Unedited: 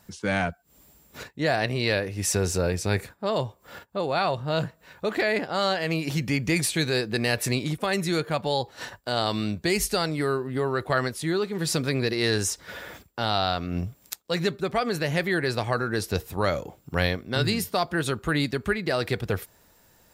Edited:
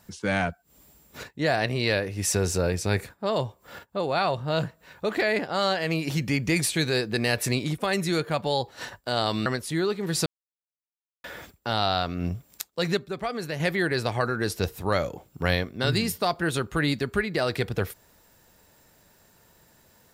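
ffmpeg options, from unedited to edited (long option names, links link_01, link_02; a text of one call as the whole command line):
ffmpeg -i in.wav -filter_complex "[0:a]asplit=6[link_01][link_02][link_03][link_04][link_05][link_06];[link_01]atrim=end=9.462[link_07];[link_02]atrim=start=10.978:end=11.78,asetpts=PTS-STARTPTS,afade=type=out:start_time=0.798:duration=0.004:curve=hsin[link_08];[link_03]atrim=start=11.78:end=12.76,asetpts=PTS-STARTPTS,volume=0[link_09];[link_04]atrim=start=12.76:end=14.492,asetpts=PTS-STARTPTS,afade=type=in:duration=0.004:curve=hsin[link_10];[link_05]atrim=start=14.488:end=15.122,asetpts=PTS-STARTPTS,volume=-5dB[link_11];[link_06]atrim=start=15.118[link_12];[link_08][link_09][link_10]concat=n=3:v=0:a=1[link_13];[link_07][link_13]acrossfade=duration=0.004:curve1=hsin:curve2=hsin[link_14];[link_14][link_11]acrossfade=duration=0.004:curve1=hsin:curve2=hsin[link_15];[link_15][link_12]acrossfade=duration=0.004:curve1=hsin:curve2=hsin" out.wav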